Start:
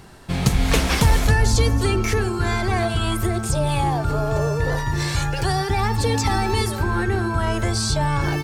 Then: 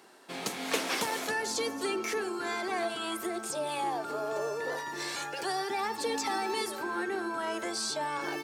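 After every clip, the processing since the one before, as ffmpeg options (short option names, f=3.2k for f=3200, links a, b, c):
-af "highpass=f=280:w=0.5412,highpass=f=280:w=1.3066,volume=-8.5dB"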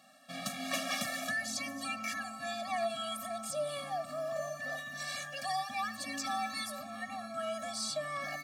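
-af "afftfilt=real='re*eq(mod(floor(b*sr/1024/270),2),0)':imag='im*eq(mod(floor(b*sr/1024/270),2),0)':win_size=1024:overlap=0.75"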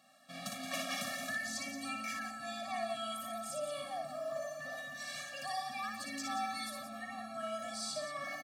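-af "aecho=1:1:58.31|174.9:0.631|0.355,volume=-5dB"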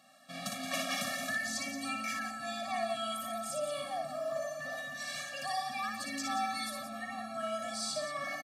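-af "aresample=32000,aresample=44100,volume=3.5dB"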